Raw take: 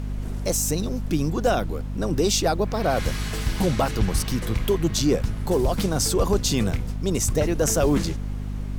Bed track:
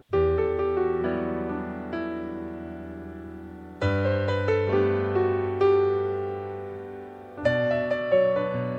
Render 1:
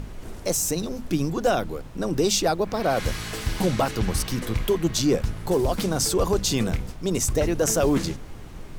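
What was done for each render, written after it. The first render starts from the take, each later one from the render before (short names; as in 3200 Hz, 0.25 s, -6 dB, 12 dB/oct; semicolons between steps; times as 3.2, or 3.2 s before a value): notches 50/100/150/200/250 Hz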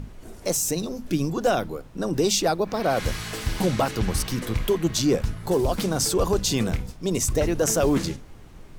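noise print and reduce 6 dB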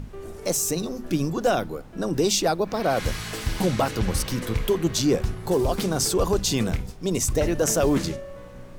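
add bed track -17.5 dB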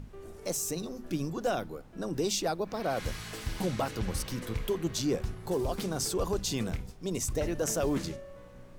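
gain -8.5 dB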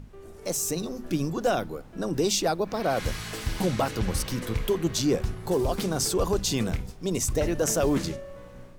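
AGC gain up to 5.5 dB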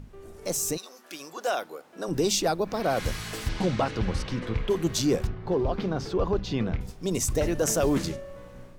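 0.76–2.07 HPF 1200 Hz -> 360 Hz; 3.48–4.69 LPF 5800 Hz -> 3200 Hz; 5.27–6.81 air absorption 270 m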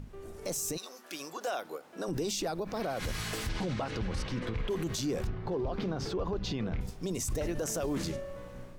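limiter -25.5 dBFS, peak gain reduction 11.5 dB; ending taper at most 260 dB/s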